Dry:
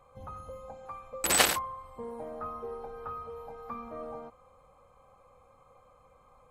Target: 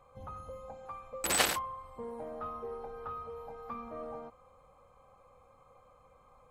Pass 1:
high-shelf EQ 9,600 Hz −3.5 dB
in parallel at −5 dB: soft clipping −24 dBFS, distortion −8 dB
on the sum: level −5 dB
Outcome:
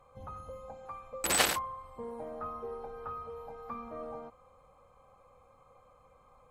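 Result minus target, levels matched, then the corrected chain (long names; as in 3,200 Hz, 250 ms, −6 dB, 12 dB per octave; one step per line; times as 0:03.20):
soft clipping: distortion −5 dB
high-shelf EQ 9,600 Hz −3.5 dB
in parallel at −5 dB: soft clipping −33 dBFS, distortion −3 dB
on the sum: level −5 dB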